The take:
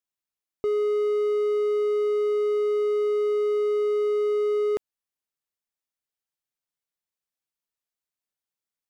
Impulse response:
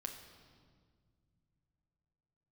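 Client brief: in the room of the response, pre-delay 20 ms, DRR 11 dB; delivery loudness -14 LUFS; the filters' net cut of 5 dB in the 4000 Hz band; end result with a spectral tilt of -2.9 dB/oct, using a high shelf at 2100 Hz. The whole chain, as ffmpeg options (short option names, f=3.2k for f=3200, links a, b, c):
-filter_complex "[0:a]highshelf=f=2.1k:g=-3.5,equalizer=f=4k:t=o:g=-4,asplit=2[a][b];[1:a]atrim=start_sample=2205,adelay=20[c];[b][c]afir=irnorm=-1:irlink=0,volume=-8.5dB[d];[a][d]amix=inputs=2:normalize=0,volume=12dB"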